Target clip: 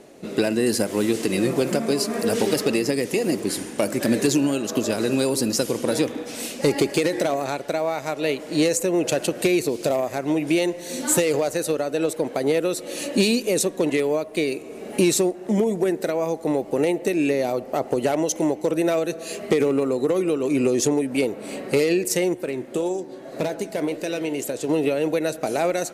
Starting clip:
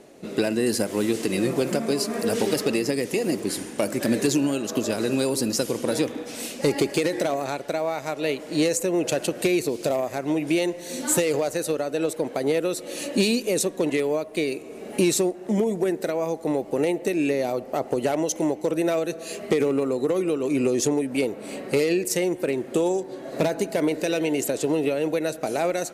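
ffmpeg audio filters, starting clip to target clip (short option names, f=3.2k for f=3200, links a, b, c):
-filter_complex "[0:a]asettb=1/sr,asplit=3[a][b][c];[a]atrim=end=22.344[d];[b]atrim=start=22.34:end=24.69,asetpts=PTS-STARTPTS,afade=t=in:d=0.004:c=qsin,afade=t=out:st=2.346:d=0.004:c=qsin,flanger=delay=8.1:depth=7.6:regen=81:speed=1.8:shape=sinusoidal[e];[c]atrim=start=24.686[f];[d][e]acrossfade=d=0.004:c1=hsin:c2=qsin[g];[g][f]acrossfade=d=0.004:c1=qsin:c2=hsin,volume=2dB"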